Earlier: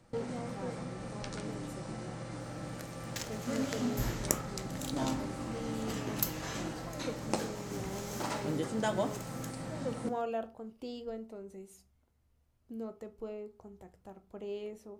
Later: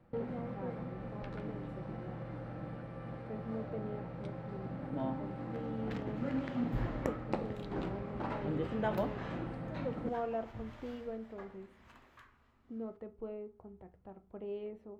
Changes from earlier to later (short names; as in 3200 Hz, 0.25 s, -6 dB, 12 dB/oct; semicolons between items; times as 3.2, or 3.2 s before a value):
first sound: send off; second sound: entry +2.75 s; master: add air absorption 490 m